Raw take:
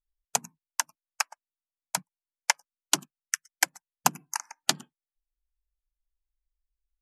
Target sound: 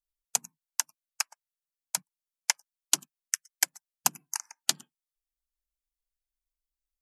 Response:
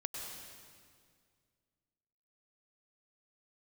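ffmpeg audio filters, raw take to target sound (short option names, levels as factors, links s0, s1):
-af "highshelf=f=2700:g=11.5,volume=0.335"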